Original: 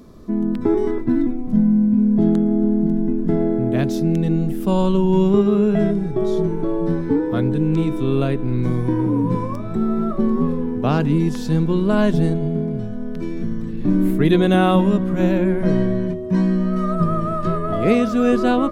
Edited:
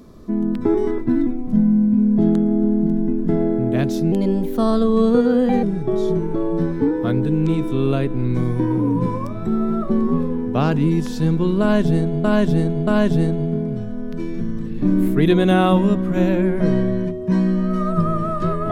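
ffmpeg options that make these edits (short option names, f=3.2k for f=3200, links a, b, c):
-filter_complex "[0:a]asplit=5[a][b][c][d][e];[a]atrim=end=4.124[f];[b]atrim=start=4.12:end=5.92,asetpts=PTS-STARTPTS,asetrate=52479,aresample=44100[g];[c]atrim=start=5.916:end=12.532[h];[d]atrim=start=11.898:end=12.532[i];[e]atrim=start=11.898[j];[f][g]acrossfade=d=0.004:c1=hsin:c2=hsin[k];[k][h]acrossfade=d=0.004:c1=hsin:c2=hsin[l];[l][i]acrossfade=d=0.004:c1=hsin:c2=hsin[m];[m][j]acrossfade=d=0.004:c1=hsin:c2=hsin"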